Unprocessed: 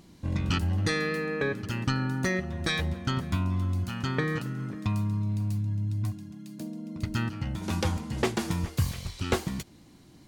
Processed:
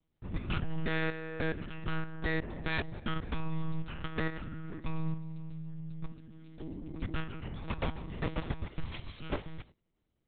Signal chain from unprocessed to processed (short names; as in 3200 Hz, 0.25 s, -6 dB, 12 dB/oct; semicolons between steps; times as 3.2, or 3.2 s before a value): tracing distortion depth 0.4 ms; gate -45 dBFS, range -21 dB; low shelf 340 Hz -2.5 dB; level quantiser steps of 10 dB; monotone LPC vocoder at 8 kHz 160 Hz